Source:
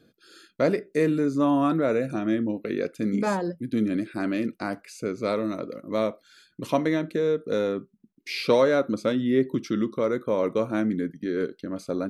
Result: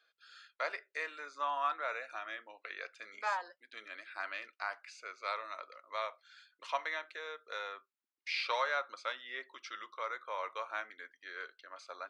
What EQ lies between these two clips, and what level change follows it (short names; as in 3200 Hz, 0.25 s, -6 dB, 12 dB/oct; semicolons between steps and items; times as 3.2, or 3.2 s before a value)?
Gaussian blur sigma 1.6 samples; HPF 900 Hz 24 dB/oct; -2.0 dB